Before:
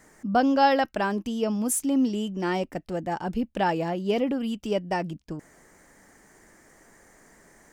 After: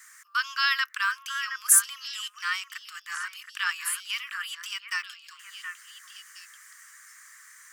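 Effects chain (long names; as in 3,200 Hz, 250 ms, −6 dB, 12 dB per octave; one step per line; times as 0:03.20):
Butterworth high-pass 1,100 Hz 96 dB per octave
high-shelf EQ 7,400 Hz +6.5 dB
on a send: echo through a band-pass that steps 720 ms, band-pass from 1,500 Hz, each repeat 1.4 octaves, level −6.5 dB
on the sum: level +5.5 dB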